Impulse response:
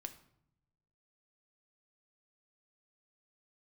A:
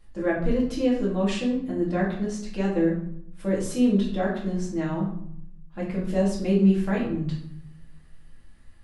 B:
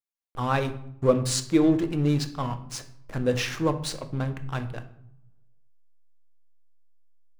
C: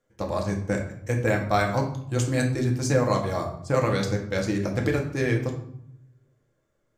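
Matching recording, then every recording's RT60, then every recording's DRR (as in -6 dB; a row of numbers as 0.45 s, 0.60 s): B; 0.70 s, 0.75 s, 0.70 s; -6.5 dB, 7.5 dB, 0.5 dB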